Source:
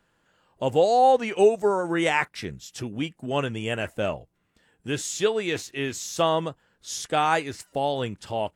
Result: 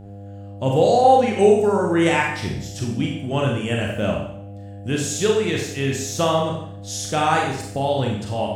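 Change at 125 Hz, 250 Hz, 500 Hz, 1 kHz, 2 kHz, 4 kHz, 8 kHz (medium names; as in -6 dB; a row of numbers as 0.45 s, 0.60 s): +10.5 dB, +7.5 dB, +4.5 dB, +4.0 dB, +3.5 dB, +4.0 dB, +5.0 dB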